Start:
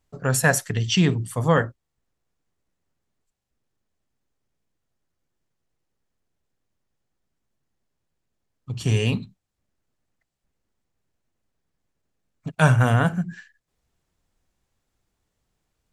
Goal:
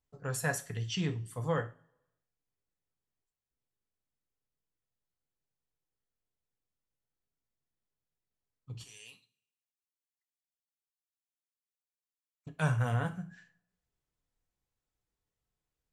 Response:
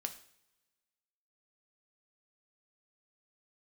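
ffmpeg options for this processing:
-filter_complex "[0:a]asettb=1/sr,asplit=3[a][b][c];[a]atrim=end=8.844[d];[b]atrim=start=8.84:end=12.47,asetpts=PTS-STARTPTS,afade=t=in:d=0.004:c=qsin,afade=t=out:st=3.626:d=0.004:c=qsin,aderivative[e];[c]atrim=start=12.466[f];[d][e]acrossfade=d=0.004:c1=hsin:c2=qsin[g];[g][f]acrossfade=d=0.004:c1=qsin:c2=hsin[h];[1:a]atrim=start_sample=2205,asetrate=74970,aresample=44100[i];[h][i]afir=irnorm=-1:irlink=0,volume=-8dB"

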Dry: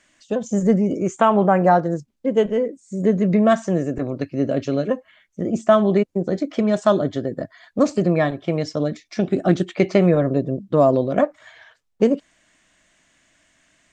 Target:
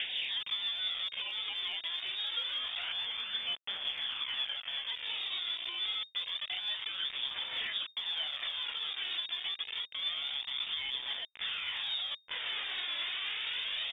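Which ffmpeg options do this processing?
-filter_complex "[0:a]aeval=exprs='val(0)+0.5*0.075*sgn(val(0))':c=same,aecho=1:1:809|1618|2427|3236:0.178|0.0765|0.0329|0.0141,acrusher=samples=17:mix=1:aa=0.000001:lfo=1:lforange=10.2:lforate=0.22,aemphasis=mode=reproduction:type=cd,acompressor=threshold=-25dB:ratio=6,acrusher=bits=4:mix=0:aa=0.000001,asettb=1/sr,asplit=3[a][b][c];[a]atrim=end=2.794[d];[b]atrim=start=2.79:end=4.87,asetpts=PTS-STARTPTS,afade=t=in:d=0.004:c=qsin,afade=t=out:st=2.076:d=0.004:c=qsin,highpass=250[e];[c]atrim=start=4.866[f];[d][e]acrossfade=d=0.004:c1=hsin:c2=qsin[g];[g][f]acrossfade=d=0.004:c1=qsin:c2=hsin,lowpass=f=3.1k:t=q:w=0.5098,lowpass=f=3.1k:t=q:w=0.6013,lowpass=f=3.1k:t=q:w=0.9,lowpass=f=3.1k:t=q:w=2.563,afreqshift=-3700,alimiter=limit=-21dB:level=0:latency=1:release=197,aphaser=in_gain=1:out_gain=1:delay=3:decay=0.39:speed=0.27:type=triangular,volume=-7dB"

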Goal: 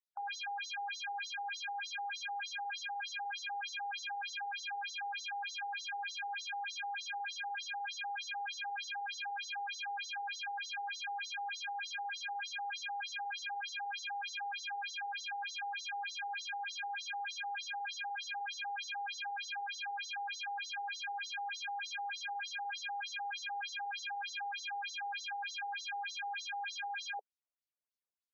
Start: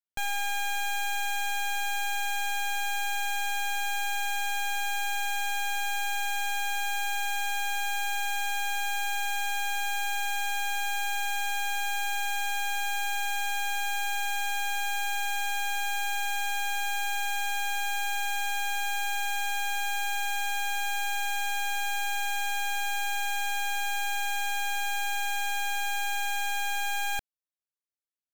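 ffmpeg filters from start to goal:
-filter_complex "[0:a]lowshelf=f=370:g=9,asplit=2[a][b];[b]asoftclip=type=tanh:threshold=-31.5dB,volume=-10dB[c];[a][c]amix=inputs=2:normalize=0,aeval=exprs='0.0794*(cos(1*acos(clip(val(0)/0.0794,-1,1)))-cos(1*PI/2))+0.00501*(cos(6*acos(clip(val(0)/0.0794,-1,1)))-cos(6*PI/2))':c=same,afftfilt=real='re*between(b*sr/1024,580*pow(5100/580,0.5+0.5*sin(2*PI*3.3*pts/sr))/1.41,580*pow(5100/580,0.5+0.5*sin(2*PI*3.3*pts/sr))*1.41)':imag='im*between(b*sr/1024,580*pow(5100/580,0.5+0.5*sin(2*PI*3.3*pts/sr))/1.41,580*pow(5100/580,0.5+0.5*sin(2*PI*3.3*pts/sr))*1.41)':win_size=1024:overlap=0.75,volume=-2dB"

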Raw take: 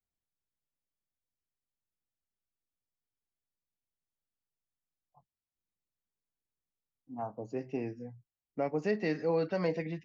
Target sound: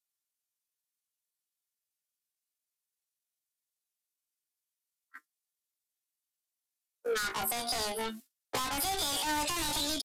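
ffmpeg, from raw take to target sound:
-filter_complex "[0:a]agate=range=-33dB:threshold=-52dB:ratio=3:detection=peak,aecho=1:1:5.1:0.35,asplit=2[a][b];[b]highpass=f=720:p=1,volume=37dB,asoftclip=type=tanh:threshold=-18dB[c];[a][c]amix=inputs=2:normalize=0,lowpass=f=5.3k:p=1,volume=-6dB,asetrate=80880,aresample=44100,atempo=0.545254,crystalizer=i=6.5:c=0,asplit=2[d][e];[e]aeval=exprs='0.2*(abs(mod(val(0)/0.2+3,4)-2)-1)':c=same,volume=-4.5dB[f];[d][f]amix=inputs=2:normalize=0,acrossover=split=230[g][h];[h]acompressor=threshold=-24dB:ratio=5[i];[g][i]amix=inputs=2:normalize=0,acrossover=split=190[j][k];[j]aeval=exprs='sgn(val(0))*max(abs(val(0))-0.00133,0)':c=same[l];[k]flanger=delay=6.2:depth=1.5:regen=66:speed=0.55:shape=triangular[m];[l][m]amix=inputs=2:normalize=0,aresample=32000,aresample=44100,volume=-2.5dB"

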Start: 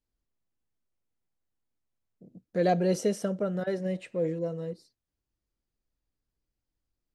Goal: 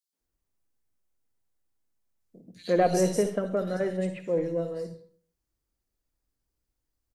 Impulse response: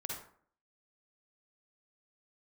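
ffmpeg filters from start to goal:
-filter_complex "[0:a]aeval=exprs='0.224*(cos(1*acos(clip(val(0)/0.224,-1,1)))-cos(1*PI/2))+0.02*(cos(2*acos(clip(val(0)/0.224,-1,1)))-cos(2*PI/2))':c=same,acrossover=split=160|3200[a][b][c];[b]adelay=130[d];[a]adelay=200[e];[e][d][c]amix=inputs=3:normalize=0,asplit=2[f][g];[1:a]atrim=start_sample=2205,highshelf=f=4k:g=10[h];[g][h]afir=irnorm=-1:irlink=0,volume=-6dB[i];[f][i]amix=inputs=2:normalize=0"

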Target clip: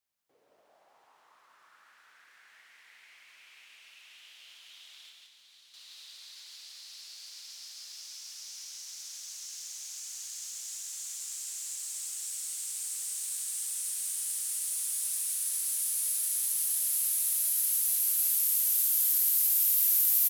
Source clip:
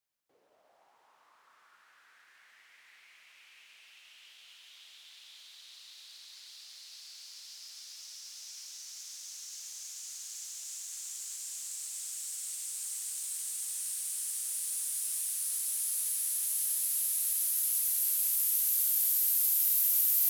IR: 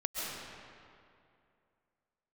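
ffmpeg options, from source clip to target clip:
-filter_complex "[0:a]asettb=1/sr,asplit=3[a][b][c];[a]atrim=end=5.094[d];[b]atrim=start=5.09:end=5.74,asetpts=PTS-STARTPTS,afade=t=in:d=0.004:c=qsin,afade=t=out:st=0.646:d=0.004:c=qsin,acrossover=split=270[e][f];[f]acompressor=threshold=-59dB:ratio=6[g];[e][g]amix=inputs=2:normalize=0[h];[c]atrim=start=5.736[i];[d][h]acrossfade=d=0.004:c1=hsin:c2=qsin[j];[j][i]acrossfade=d=0.004:c1=qsin:c2=hsin,asettb=1/sr,asplit=3[k][l][m];[k]atrim=end=15.734[n];[l]atrim=start=15.73:end=16.37,asetpts=PTS-STARTPTS,afade=t=in:d=0.004:c=qsin,afade=t=out:st=0.636:d=0.004:c=qsin,lowshelf=f=150:g=-11[o];[m]atrim=start=16.366[p];[n][o]acrossfade=d=0.004:c1=hsin:c2=qsin[q];[q][p]acrossfade=d=0.004:c1=qsin:c2=hsin,aecho=1:1:61.22|169.1:0.355|0.708"

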